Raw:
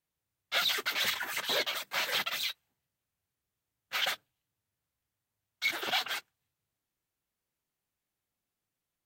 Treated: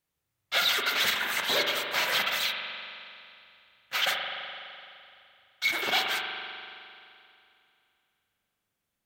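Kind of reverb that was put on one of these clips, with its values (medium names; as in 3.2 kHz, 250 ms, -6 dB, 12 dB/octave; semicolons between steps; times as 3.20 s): spring tank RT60 2.6 s, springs 42 ms, chirp 80 ms, DRR 2 dB; trim +3.5 dB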